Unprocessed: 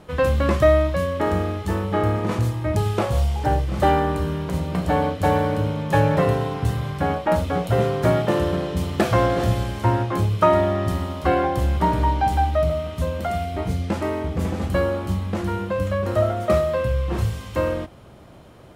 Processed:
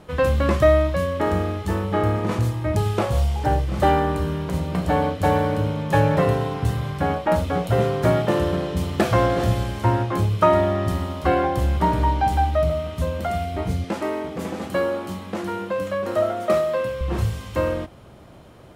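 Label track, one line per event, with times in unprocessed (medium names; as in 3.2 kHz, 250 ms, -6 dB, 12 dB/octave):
13.840000	17.010000	high-pass 220 Hz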